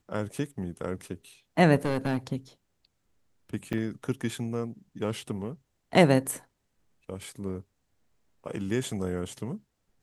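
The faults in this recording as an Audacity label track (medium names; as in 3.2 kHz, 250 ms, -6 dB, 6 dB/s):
1.750000	2.170000	clipped -22.5 dBFS
3.730000	3.740000	dropout 5.1 ms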